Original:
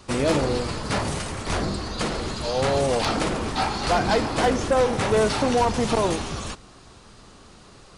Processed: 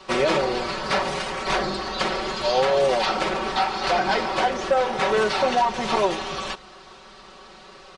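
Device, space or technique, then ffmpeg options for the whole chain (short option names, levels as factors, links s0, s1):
DJ mixer with the lows and highs turned down: -filter_complex "[0:a]acrossover=split=360 5500:gain=0.224 1 0.126[s0][s1][s2];[s0][s1][s2]amix=inputs=3:normalize=0,aecho=1:1:5.3:0.89,alimiter=limit=0.178:level=0:latency=1:release=467,volume=1.58"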